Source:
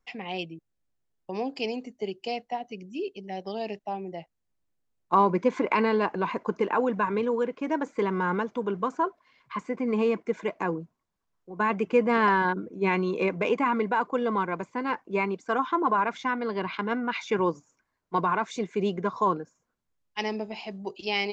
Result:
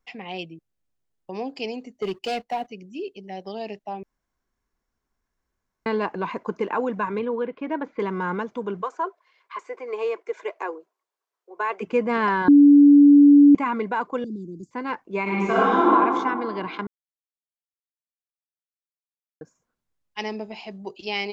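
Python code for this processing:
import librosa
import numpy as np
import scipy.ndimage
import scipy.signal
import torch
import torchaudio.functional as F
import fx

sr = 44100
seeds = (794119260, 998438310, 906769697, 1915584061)

y = fx.leveller(x, sr, passes=2, at=(2.02, 2.67))
y = fx.lowpass(y, sr, hz=3900.0, slope=24, at=(7.19, 8.0))
y = fx.cheby1_highpass(y, sr, hz=380.0, order=4, at=(8.81, 11.81), fade=0.02)
y = fx.cheby1_bandstop(y, sr, low_hz=350.0, high_hz=4900.0, order=4, at=(14.24, 14.71))
y = fx.reverb_throw(y, sr, start_s=15.22, length_s=0.66, rt60_s=2.0, drr_db=-8.5)
y = fx.edit(y, sr, fx.room_tone_fill(start_s=4.03, length_s=1.83),
    fx.bleep(start_s=12.48, length_s=1.07, hz=287.0, db=-8.0),
    fx.silence(start_s=16.87, length_s=2.54), tone=tone)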